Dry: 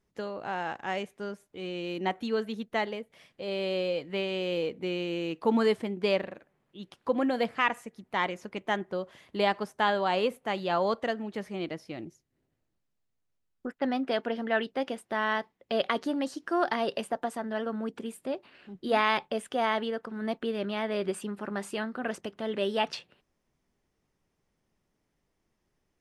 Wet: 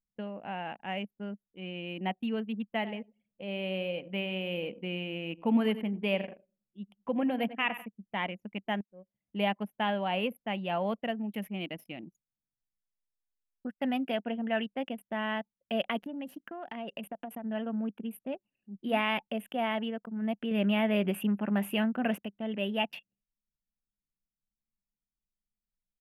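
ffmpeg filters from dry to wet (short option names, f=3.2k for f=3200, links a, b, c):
-filter_complex "[0:a]asettb=1/sr,asplit=3[a][b][c];[a]atrim=end=2.714[d];[b]atrim=start=2.71:end=7.86,asetpts=PTS-STARTPTS,afade=t=in:d=0.004:c=qsin,afade=t=out:st=5.146:d=0.004:c=qsin,aecho=1:1:95|190|285|380:0.211|0.093|0.0409|0.018,atrim=end_sample=227115[e];[c]atrim=start=7.856[f];[d][e]acrossfade=d=0.004:c1=hsin:c2=qsin[g];[g][f]acrossfade=d=0.004:c1=qsin:c2=hsin,asettb=1/sr,asplit=3[h][i][j];[h]atrim=end=11.144[k];[i]atrim=start=11.14:end=14.12,asetpts=PTS-STARTPTS,afade=t=in:d=0.004:c=qsin,afade=t=out:st=2.976:d=0.004:c=qsin,equalizer=f=8.2k:w=0.41:g=10[l];[j]atrim=start=14.116[m];[k][l]acrossfade=d=0.004:c1=hsin:c2=qsin[n];[n][m]acrossfade=d=0.004:c1=qsin:c2=hsin,asettb=1/sr,asplit=3[o][p][q];[o]atrim=end=16.044[r];[p]atrim=start=16.04:end=17.47,asetpts=PTS-STARTPTS,afade=t=in:d=0.004:c=qsin,afade=t=out:st=1.426:d=0.004:c=qsin,acompressor=threshold=-32dB:ratio=5:attack=3.2:release=140:knee=1:detection=peak[s];[q]atrim=start=17.466[t];[r][s]acrossfade=d=0.004:c1=hsin:c2=qsin[u];[u][t]acrossfade=d=0.004:c1=qsin:c2=hsin,asettb=1/sr,asplit=3[v][w][x];[v]atrim=end=20.514[y];[w]atrim=start=20.51:end=22.19,asetpts=PTS-STARTPTS,afade=t=in:d=0.004:c=qsin,afade=t=out:st=1.676:d=0.004:c=qsin,acontrast=42[z];[x]atrim=start=22.186[aa];[y][z]acrossfade=d=0.004:c1=hsin:c2=qsin[ab];[ab][aa]acrossfade=d=0.004:c1=qsin:c2=hsin,asplit=2[ac][ad];[ac]atrim=end=8.81,asetpts=PTS-STARTPTS,afade=t=out:st=8.806:d=0.004:c=hsin[ae];[ad]atrim=start=8.81,asetpts=PTS-STARTPTS,afade=t=in:d=0.65[af];[ae][af]concat=n=2:v=0:a=1,aemphasis=mode=production:type=75fm,anlmdn=1,firequalizer=gain_entry='entry(110,0);entry(200,12);entry(370,-1);entry(670,6);entry(1200,-3);entry(2800,7);entry(4200,-21);entry(8100,-23);entry(13000,8)':delay=0.05:min_phase=1,volume=-7.5dB"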